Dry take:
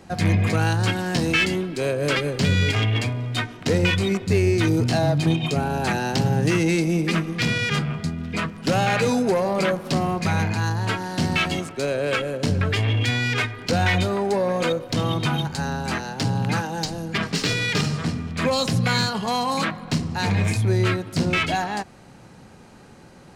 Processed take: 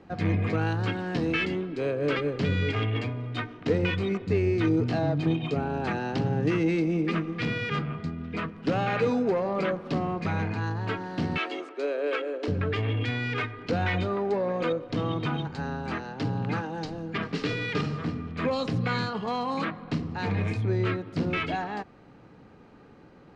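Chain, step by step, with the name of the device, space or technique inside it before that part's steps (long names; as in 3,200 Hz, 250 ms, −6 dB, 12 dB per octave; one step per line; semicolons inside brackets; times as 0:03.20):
inside a cardboard box (low-pass filter 3,100 Hz 12 dB per octave; hollow resonant body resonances 300/440/1,200 Hz, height 7 dB, ringing for 45 ms)
0:11.38–0:12.48: Butterworth high-pass 300 Hz 36 dB per octave
level −7 dB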